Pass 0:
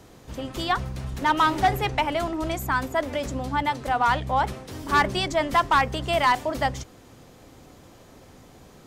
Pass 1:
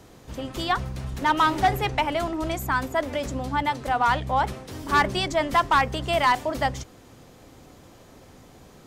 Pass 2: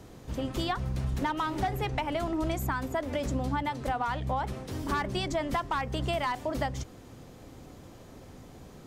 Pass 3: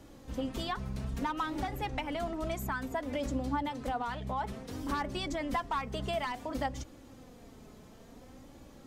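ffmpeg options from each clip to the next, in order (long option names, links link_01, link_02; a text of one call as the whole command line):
ffmpeg -i in.wav -af anull out.wav
ffmpeg -i in.wav -af "acompressor=threshold=-26dB:ratio=6,lowshelf=frequency=460:gain=5.5,volume=-3dB" out.wav
ffmpeg -i in.wav -af "flanger=delay=3.5:depth=1.2:regen=29:speed=0.58:shape=sinusoidal" out.wav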